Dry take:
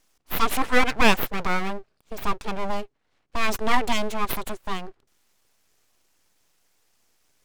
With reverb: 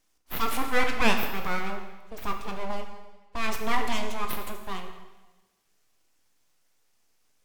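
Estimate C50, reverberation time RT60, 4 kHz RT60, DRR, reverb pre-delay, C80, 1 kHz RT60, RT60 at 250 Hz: 6.5 dB, 1.2 s, 1.1 s, 4.0 dB, 6 ms, 8.0 dB, 1.2 s, 1.3 s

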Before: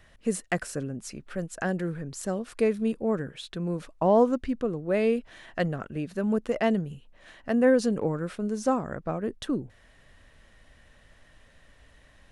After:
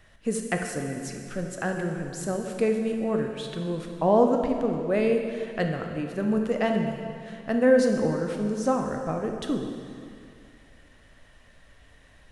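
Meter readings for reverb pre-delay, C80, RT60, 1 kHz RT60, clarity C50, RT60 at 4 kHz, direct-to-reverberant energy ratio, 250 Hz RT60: 8 ms, 5.5 dB, 2.3 s, 2.4 s, 4.5 dB, 2.2 s, 3.0 dB, 2.4 s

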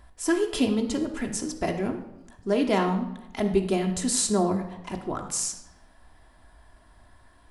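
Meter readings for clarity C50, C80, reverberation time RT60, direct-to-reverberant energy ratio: 9.0 dB, 11.0 dB, 0.90 s, 2.5 dB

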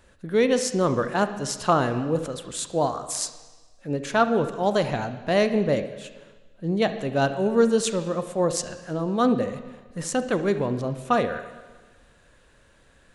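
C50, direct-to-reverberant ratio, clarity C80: 10.5 dB, 9.5 dB, 12.5 dB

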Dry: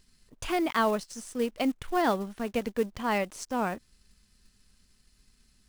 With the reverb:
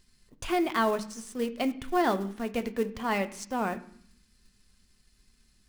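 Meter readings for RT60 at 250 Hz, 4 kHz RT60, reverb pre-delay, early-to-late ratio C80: 0.85 s, 0.85 s, 3 ms, 18.5 dB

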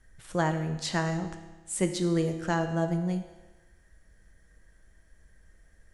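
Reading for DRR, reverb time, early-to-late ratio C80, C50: 6.5 dB, 1.2 s, 11.0 dB, 9.5 dB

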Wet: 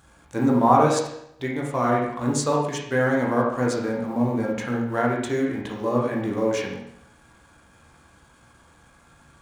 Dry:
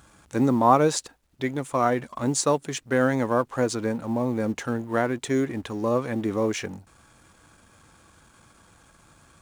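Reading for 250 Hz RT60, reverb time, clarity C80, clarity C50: 0.75 s, 0.75 s, 6.0 dB, 2.5 dB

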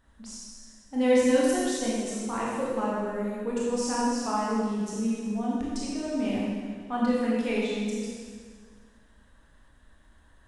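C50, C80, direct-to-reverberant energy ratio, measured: −2.0 dB, 0.0 dB, −6.5 dB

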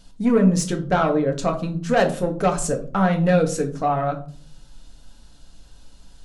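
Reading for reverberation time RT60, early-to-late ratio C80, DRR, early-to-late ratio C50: 0.45 s, 17.0 dB, 3.0 dB, 12.5 dB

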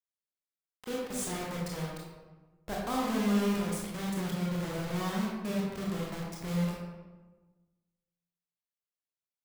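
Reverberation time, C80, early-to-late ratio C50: 1.3 s, 2.5 dB, 0.0 dB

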